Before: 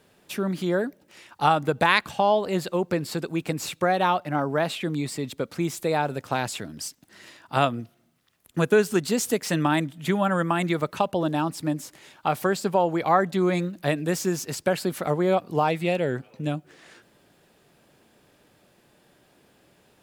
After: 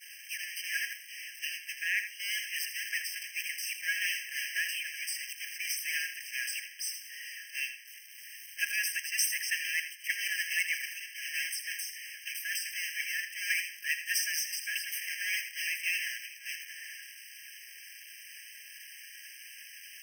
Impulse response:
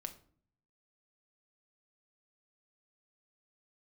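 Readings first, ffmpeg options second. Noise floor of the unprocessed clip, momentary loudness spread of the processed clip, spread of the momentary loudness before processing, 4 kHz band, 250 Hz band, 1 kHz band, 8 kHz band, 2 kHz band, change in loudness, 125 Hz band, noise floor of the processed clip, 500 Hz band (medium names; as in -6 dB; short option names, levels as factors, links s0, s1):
-62 dBFS, 16 LU, 10 LU, -0.5 dB, under -40 dB, under -40 dB, +1.5 dB, -0.5 dB, -8.0 dB, under -40 dB, -50 dBFS, under -40 dB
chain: -filter_complex "[0:a]aeval=exprs='val(0)+0.5*0.1*sgn(val(0))':c=same,adynamicequalizer=threshold=0.0178:dfrequency=770:dqfactor=5.5:tfrequency=770:tqfactor=5.5:attack=5:release=100:ratio=0.375:range=3:mode=cutabove:tftype=bell,alimiter=limit=0.299:level=0:latency=1:release=285,agate=range=0.0224:threshold=0.178:ratio=3:detection=peak,asplit=2[s0][s1];[1:a]atrim=start_sample=2205,adelay=80[s2];[s1][s2]afir=irnorm=-1:irlink=0,volume=0.447[s3];[s0][s3]amix=inputs=2:normalize=0,afftfilt=real='re*eq(mod(floor(b*sr/1024/1600),2),1)':imag='im*eq(mod(floor(b*sr/1024/1600),2),1)':win_size=1024:overlap=0.75,volume=1.68"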